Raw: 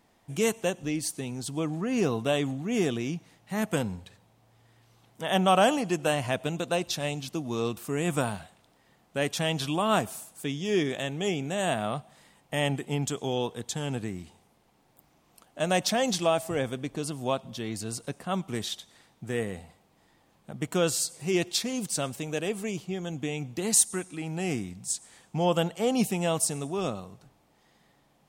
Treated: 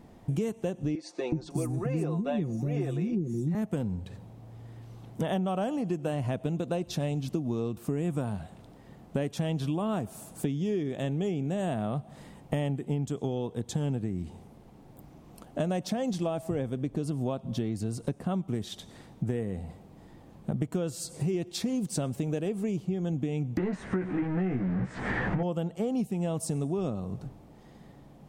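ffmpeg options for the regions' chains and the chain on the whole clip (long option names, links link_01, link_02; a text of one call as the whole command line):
ffmpeg -i in.wav -filter_complex "[0:a]asettb=1/sr,asplit=3[link_01][link_02][link_03];[link_01]atrim=end=0.954[link_04];[link_02]atrim=start=0.95:end=3.55,asetpts=PTS-STARTPTS,afade=type=in:duration=0.004:curve=qsin,afade=type=out:start_time=2.596:duration=0.004:curve=qsin,bandreject=frequency=3100:width=5.9,aecho=1:1:5.7:0.65,atrim=end_sample=114660,acrossover=split=360|5700[link_05][link_06][link_07];[link_05]adelay=370[link_08];[link_07]adelay=550[link_09];[link_08][link_06][link_09]amix=inputs=3:normalize=0,atrim=end_sample=114660[link_10];[link_03]atrim=start=3.546[link_11];[link_04][link_10]acrossfade=duration=0.004:curve1=hsin:curve2=qsin[link_12];[link_12][link_11]acrossfade=duration=0.004:curve1=qsin:curve2=hsin,asettb=1/sr,asplit=3[link_13][link_14][link_15];[link_13]atrim=end=23.574[link_16];[link_14]atrim=start=23.57:end=25.43,asetpts=PTS-STARTPTS,afade=type=in:duration=0.004:curve=qsin,afade=type=out:start_time=1.856:duration=0.004:curve=qsin,aeval=exprs='val(0)+0.5*0.0447*sgn(val(0))':channel_layout=same,lowpass=frequency=1800:width_type=q:width=3.1,asplit=2[link_17][link_18];[link_18]adelay=16,volume=-4dB[link_19];[link_17][link_19]amix=inputs=2:normalize=0,atrim=end_sample=82026[link_20];[link_15]atrim=start=25.426[link_21];[link_16][link_20]acrossfade=duration=0.004:curve1=hsin:curve2=qsin[link_22];[link_22][link_21]acrossfade=duration=0.004:curve1=qsin:curve2=hsin,tiltshelf=frequency=680:gain=8.5,acompressor=threshold=-36dB:ratio=12,volume=9dB" out.wav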